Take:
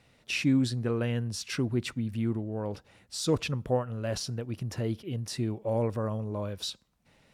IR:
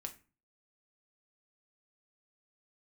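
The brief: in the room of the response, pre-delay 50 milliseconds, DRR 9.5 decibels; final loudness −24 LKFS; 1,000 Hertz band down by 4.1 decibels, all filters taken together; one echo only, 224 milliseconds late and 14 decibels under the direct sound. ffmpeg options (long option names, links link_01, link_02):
-filter_complex "[0:a]equalizer=frequency=1000:width_type=o:gain=-5.5,aecho=1:1:224:0.2,asplit=2[link_01][link_02];[1:a]atrim=start_sample=2205,adelay=50[link_03];[link_02][link_03]afir=irnorm=-1:irlink=0,volume=-6.5dB[link_04];[link_01][link_04]amix=inputs=2:normalize=0,volume=7.5dB"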